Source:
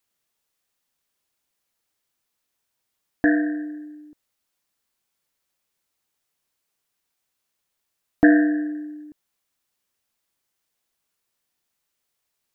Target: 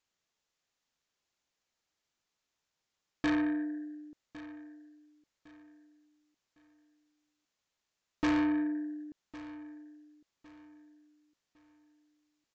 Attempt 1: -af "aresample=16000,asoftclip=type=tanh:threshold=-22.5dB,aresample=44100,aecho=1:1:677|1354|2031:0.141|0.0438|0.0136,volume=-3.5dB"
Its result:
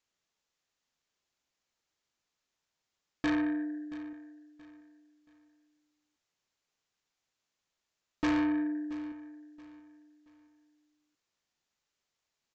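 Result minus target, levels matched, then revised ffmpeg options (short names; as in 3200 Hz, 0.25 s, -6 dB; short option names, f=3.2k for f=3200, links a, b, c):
echo 0.43 s early
-af "aresample=16000,asoftclip=type=tanh:threshold=-22.5dB,aresample=44100,aecho=1:1:1107|2214|3321:0.141|0.0438|0.0136,volume=-3.5dB"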